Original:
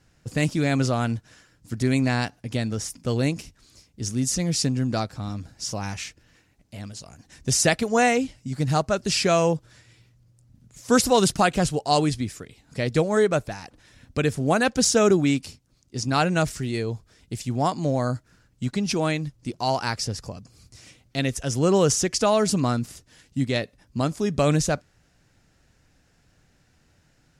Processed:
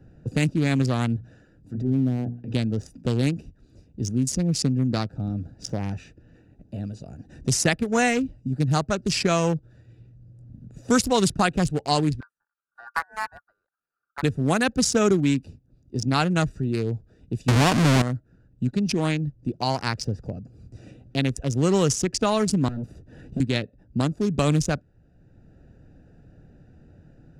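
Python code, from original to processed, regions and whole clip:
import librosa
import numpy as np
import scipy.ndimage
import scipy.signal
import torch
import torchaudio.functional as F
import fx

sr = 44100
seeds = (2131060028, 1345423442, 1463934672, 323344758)

y = fx.chain(x, sr, fx.env_lowpass_down(base_hz=470.0, full_db=-21.0),
    fx.hum_notches(base_hz=60, count=8),
    fx.transient(attack_db=-11, sustain_db=3), at=(1.16, 2.54))
y = fx.chain(y, sr, fx.curve_eq(hz=(280.0, 710.0, 2100.0, 3100.0, 5200.0, 13000.0), db=(0, -12, -21, 3, -16, 13)),
    fx.ring_mod(carrier_hz=1300.0),
    fx.upward_expand(threshold_db=-41.0, expansion=2.5), at=(12.2, 14.23))
y = fx.chain(y, sr, fx.halfwave_hold(),
    fx.lowpass(hz=8500.0, slope=12),
    fx.env_flatten(amount_pct=70), at=(17.48, 18.02))
y = fx.chain(y, sr, fx.overload_stage(gain_db=29.5),
    fx.band_squash(depth_pct=70), at=(22.68, 23.4))
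y = fx.wiener(y, sr, points=41)
y = fx.dynamic_eq(y, sr, hz=610.0, q=1.4, threshold_db=-33.0, ratio=4.0, max_db=-5)
y = fx.band_squash(y, sr, depth_pct=40)
y = y * librosa.db_to_amplitude(2.0)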